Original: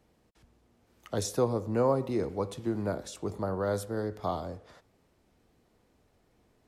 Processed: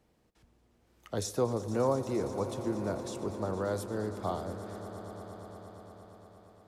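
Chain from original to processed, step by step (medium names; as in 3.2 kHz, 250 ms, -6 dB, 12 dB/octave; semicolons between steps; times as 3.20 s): echo with a slow build-up 116 ms, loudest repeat 5, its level -16 dB; trim -2.5 dB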